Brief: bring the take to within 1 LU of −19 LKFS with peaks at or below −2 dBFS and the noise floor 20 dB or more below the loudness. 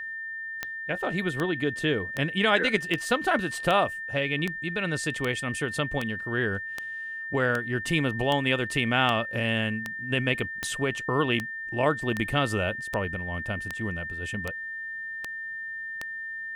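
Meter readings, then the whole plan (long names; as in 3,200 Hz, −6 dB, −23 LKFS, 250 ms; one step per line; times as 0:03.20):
number of clicks 21; interfering tone 1,800 Hz; level of the tone −33 dBFS; integrated loudness −27.5 LKFS; sample peak −8.0 dBFS; target loudness −19.0 LKFS
→ click removal
notch filter 1,800 Hz, Q 30
level +8.5 dB
brickwall limiter −2 dBFS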